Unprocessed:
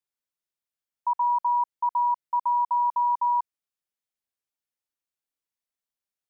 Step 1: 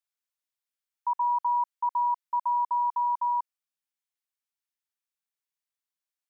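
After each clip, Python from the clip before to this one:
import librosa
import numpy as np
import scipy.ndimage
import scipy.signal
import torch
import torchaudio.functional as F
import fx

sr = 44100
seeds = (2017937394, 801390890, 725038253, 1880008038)

y = fx.rider(x, sr, range_db=10, speed_s=2.0)
y = scipy.signal.sosfilt(scipy.signal.butter(2, 860.0, 'highpass', fs=sr, output='sos'), y)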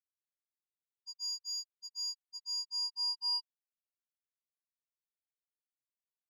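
y = (np.mod(10.0 ** (28.0 / 20.0) * x + 1.0, 2.0) - 1.0) / 10.0 ** (28.0 / 20.0)
y = fx.spectral_expand(y, sr, expansion=4.0)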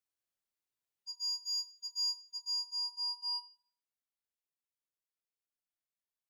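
y = fx.rider(x, sr, range_db=10, speed_s=0.5)
y = fx.room_shoebox(y, sr, seeds[0], volume_m3=100.0, walls='mixed', distance_m=0.3)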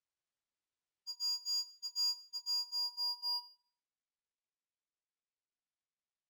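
y = scipy.ndimage.median_filter(x, 3, mode='constant')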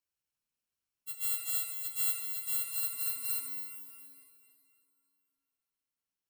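y = fx.bit_reversed(x, sr, seeds[1], block=64)
y = fx.rev_plate(y, sr, seeds[2], rt60_s=3.1, hf_ratio=0.8, predelay_ms=0, drr_db=2.5)
y = y * 10.0 ** (3.0 / 20.0)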